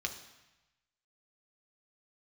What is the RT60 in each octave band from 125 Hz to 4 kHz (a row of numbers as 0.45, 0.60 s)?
1.3, 1.0, 0.95, 1.1, 1.1, 1.0 s